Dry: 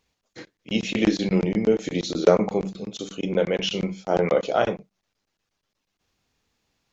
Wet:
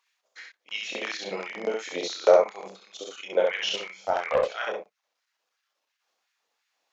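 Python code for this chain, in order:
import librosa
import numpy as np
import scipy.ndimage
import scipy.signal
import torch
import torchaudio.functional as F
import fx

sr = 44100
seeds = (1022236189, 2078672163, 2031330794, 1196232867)

y = fx.filter_lfo_highpass(x, sr, shape='sine', hz=2.9, low_hz=540.0, high_hz=1900.0, q=2.1)
y = fx.room_early_taps(y, sr, ms=(30, 67), db=(-7.5, -3.0))
y = y * (1.0 - 0.34 / 2.0 + 0.34 / 2.0 * np.cos(2.0 * np.pi * 0.54 * (np.arange(len(y)) / sr)))
y = fx.doppler_dist(y, sr, depth_ms=0.17, at=(3.71, 4.61))
y = y * 10.0 ** (-3.0 / 20.0)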